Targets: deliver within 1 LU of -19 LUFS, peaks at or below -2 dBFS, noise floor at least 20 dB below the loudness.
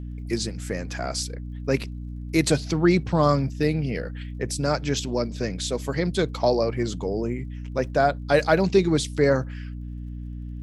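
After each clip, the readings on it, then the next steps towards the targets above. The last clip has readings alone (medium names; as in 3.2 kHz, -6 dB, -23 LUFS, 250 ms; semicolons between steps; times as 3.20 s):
tick rate 31 per s; hum 60 Hz; highest harmonic 300 Hz; hum level -31 dBFS; loudness -24.5 LUFS; peak level -5.5 dBFS; loudness target -19.0 LUFS
-> de-click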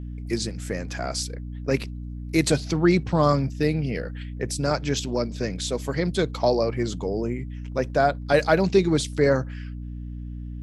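tick rate 0 per s; hum 60 Hz; highest harmonic 300 Hz; hum level -31 dBFS
-> hum notches 60/120/180/240/300 Hz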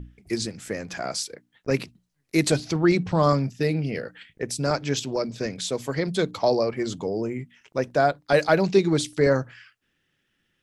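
hum not found; loudness -25.0 LUFS; peak level -5.5 dBFS; loudness target -19.0 LUFS
-> trim +6 dB; peak limiter -2 dBFS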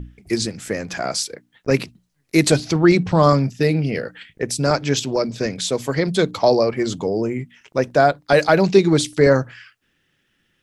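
loudness -19.0 LUFS; peak level -2.0 dBFS; noise floor -68 dBFS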